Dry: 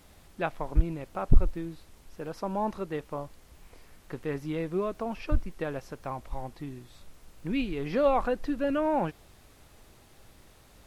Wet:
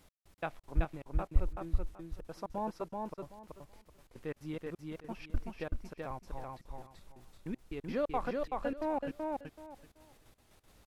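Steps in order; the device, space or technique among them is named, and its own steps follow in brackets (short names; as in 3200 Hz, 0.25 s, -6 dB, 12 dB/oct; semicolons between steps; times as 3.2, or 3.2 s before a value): trance gate with a delay (step gate "x..x.xx.xx." 177 bpm -60 dB; feedback echo 0.38 s, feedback 21%, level -3 dB); gain -7 dB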